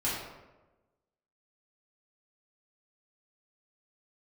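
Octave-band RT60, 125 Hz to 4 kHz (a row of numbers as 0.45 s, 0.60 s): 1.2 s, 1.2 s, 1.2 s, 1.0 s, 0.85 s, 0.60 s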